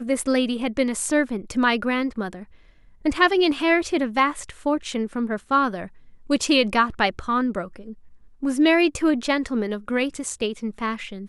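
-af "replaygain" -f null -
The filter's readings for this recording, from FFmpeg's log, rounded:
track_gain = +2.1 dB
track_peak = 0.422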